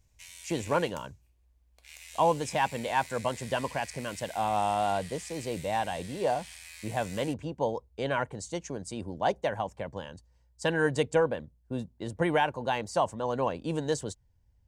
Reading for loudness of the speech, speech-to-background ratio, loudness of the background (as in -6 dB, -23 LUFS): -31.0 LUFS, 15.0 dB, -46.0 LUFS